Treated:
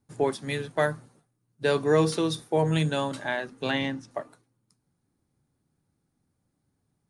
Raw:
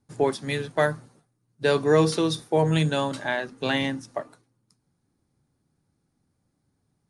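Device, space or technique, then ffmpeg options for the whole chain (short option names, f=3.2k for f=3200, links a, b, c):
exciter from parts: -filter_complex "[0:a]asettb=1/sr,asplit=3[a][b][c];[a]atrim=end=3.714[d];[b]atrim=start=3.71:end=4.11,asetpts=PTS-STARTPTS,afade=t=in:d=0.004:c=qsin,afade=t=out:st=0.396:d=0.004:c=qsin,lowpass=6.1k[e];[c]atrim=start=4.106[f];[d][e]acrossfade=d=0.004:c1=hsin:c2=qsin[g];[g][f]acrossfade=d=0.004:c1=qsin:c2=hsin,asplit=2[h][i];[i]highpass=f=4.6k:w=0.5412,highpass=f=4.6k:w=1.3066,asoftclip=type=tanh:threshold=-31dB,volume=-11.5dB[j];[h][j]amix=inputs=2:normalize=0,volume=-2.5dB"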